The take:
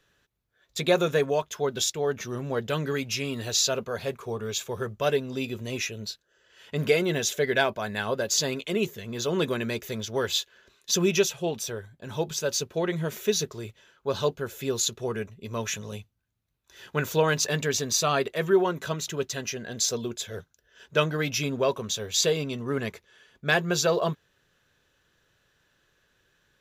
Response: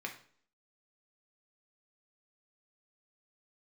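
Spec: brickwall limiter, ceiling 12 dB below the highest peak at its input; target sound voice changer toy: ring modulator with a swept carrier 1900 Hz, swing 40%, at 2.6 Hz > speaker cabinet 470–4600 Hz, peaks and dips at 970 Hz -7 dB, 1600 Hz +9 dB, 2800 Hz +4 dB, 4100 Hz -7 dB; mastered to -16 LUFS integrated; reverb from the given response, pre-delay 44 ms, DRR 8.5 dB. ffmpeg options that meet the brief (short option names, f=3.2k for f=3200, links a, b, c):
-filter_complex "[0:a]alimiter=limit=-20dB:level=0:latency=1,asplit=2[a][b];[1:a]atrim=start_sample=2205,adelay=44[c];[b][c]afir=irnorm=-1:irlink=0,volume=-9.5dB[d];[a][d]amix=inputs=2:normalize=0,aeval=exprs='val(0)*sin(2*PI*1900*n/s+1900*0.4/2.6*sin(2*PI*2.6*n/s))':c=same,highpass=470,equalizer=f=970:t=q:w=4:g=-7,equalizer=f=1.6k:t=q:w=4:g=9,equalizer=f=2.8k:t=q:w=4:g=4,equalizer=f=4.1k:t=q:w=4:g=-7,lowpass=f=4.6k:w=0.5412,lowpass=f=4.6k:w=1.3066,volume=13dB"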